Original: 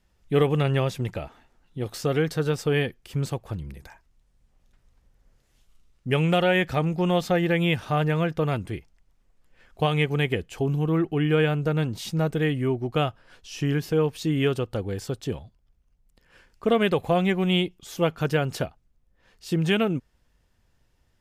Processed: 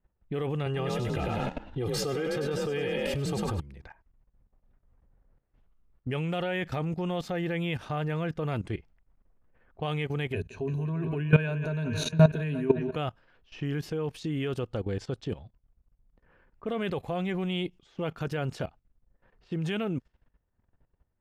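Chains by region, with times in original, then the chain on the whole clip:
0.66–3.6 comb 2.5 ms, depth 74% + frequency-shifting echo 0.1 s, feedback 46%, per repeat +34 Hz, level -5 dB + fast leveller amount 50%
10.33–12.96 ripple EQ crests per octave 1.5, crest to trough 15 dB + analogue delay 0.172 s, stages 4096, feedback 75%, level -14 dB
whole clip: low-pass opened by the level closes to 1300 Hz, open at -22.5 dBFS; high shelf 7800 Hz -6 dB; level quantiser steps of 16 dB; gain +2 dB

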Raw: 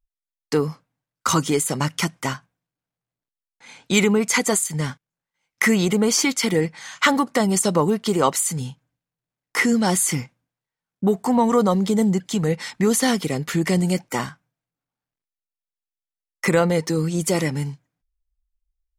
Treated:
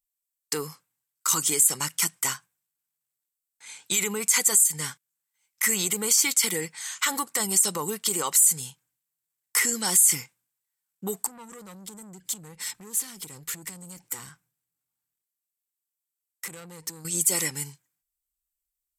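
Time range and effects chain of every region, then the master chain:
11.26–17.05 low shelf 380 Hz +11.5 dB + compressor 4:1, threshold -28 dBFS + tube stage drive 29 dB, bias 0.35
whole clip: thirty-one-band EQ 250 Hz -6 dB, 630 Hz -9 dB, 8000 Hz +11 dB, 12500 Hz +12 dB; limiter -11.5 dBFS; tilt +3 dB/oct; gain -6 dB

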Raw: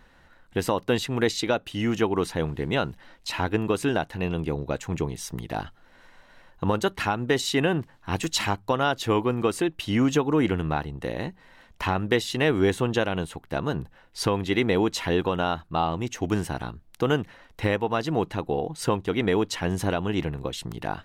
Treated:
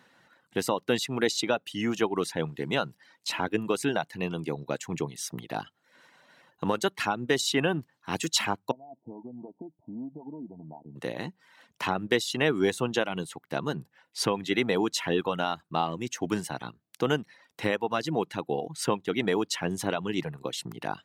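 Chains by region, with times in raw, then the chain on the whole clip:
8.71–10.96 compressor, threshold -30 dBFS + rippled Chebyshev low-pass 950 Hz, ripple 9 dB
whole clip: HPF 130 Hz 24 dB/oct; reverb removal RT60 0.6 s; bell 6900 Hz +4 dB 2.4 oct; gain -2.5 dB

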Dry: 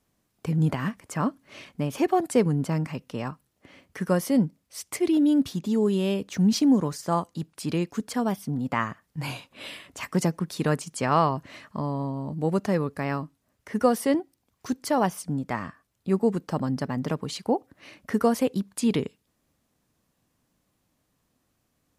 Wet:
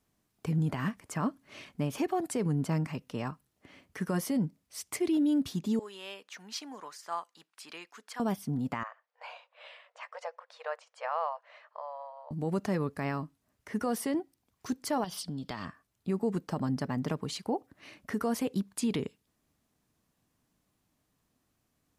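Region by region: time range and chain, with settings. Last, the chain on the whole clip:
5.79–8.2 HPF 1100 Hz + high shelf 4600 Hz -10 dB
8.83–12.31 brick-wall FIR high-pass 470 Hz + tape spacing loss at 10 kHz 30 dB
15.04–15.65 band shelf 3900 Hz +14 dB 1 oct + compressor 10:1, threshold -29 dBFS
whole clip: notch 530 Hz, Q 12; limiter -18.5 dBFS; gain -3.5 dB

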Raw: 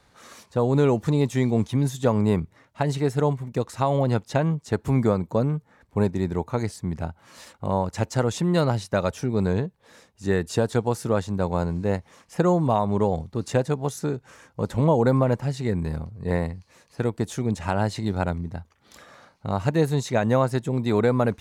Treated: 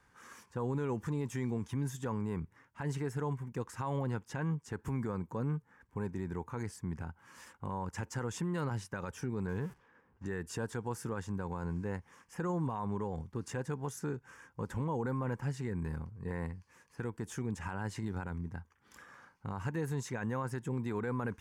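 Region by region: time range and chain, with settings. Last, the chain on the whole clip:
9.47–10.26 zero-crossing step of -37 dBFS + gate -40 dBFS, range -16 dB + low-pass opened by the level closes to 880 Hz, open at -22.5 dBFS
whole clip: thirty-one-band EQ 630 Hz -12 dB, 1000 Hz +5 dB, 1600 Hz +7 dB, 4000 Hz -12 dB; limiter -19 dBFS; gain -8.5 dB

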